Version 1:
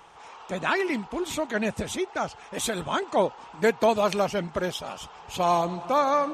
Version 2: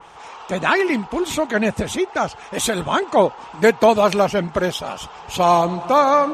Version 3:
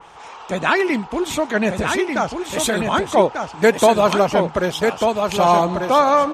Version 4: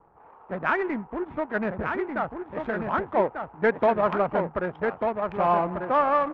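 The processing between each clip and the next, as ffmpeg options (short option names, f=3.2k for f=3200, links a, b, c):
-af "adynamicequalizer=threshold=0.00891:dfrequency=2800:dqfactor=0.7:tfrequency=2800:tqfactor=0.7:attack=5:release=100:ratio=0.375:range=2:mode=cutabove:tftype=highshelf,volume=8dB"
-af "aecho=1:1:1192:0.562"
-af "adynamicsmooth=sensitivity=1:basefreq=520,lowpass=f=1.7k:t=q:w=1.5,volume=-9dB"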